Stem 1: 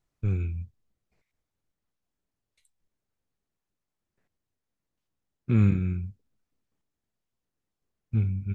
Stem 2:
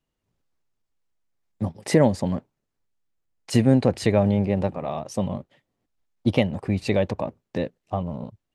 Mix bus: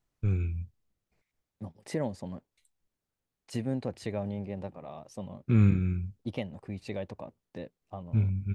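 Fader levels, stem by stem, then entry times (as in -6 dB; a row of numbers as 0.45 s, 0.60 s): -1.0 dB, -14.5 dB; 0.00 s, 0.00 s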